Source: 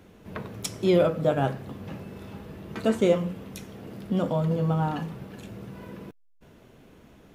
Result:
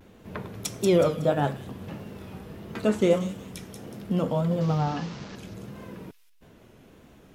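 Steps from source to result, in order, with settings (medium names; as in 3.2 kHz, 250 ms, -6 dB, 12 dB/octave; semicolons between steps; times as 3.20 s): 4.61–5.36 s: one-bit delta coder 32 kbps, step -36.5 dBFS; vibrato 1.6 Hz 93 cents; feedback echo behind a high-pass 185 ms, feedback 34%, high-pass 4.7 kHz, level -3 dB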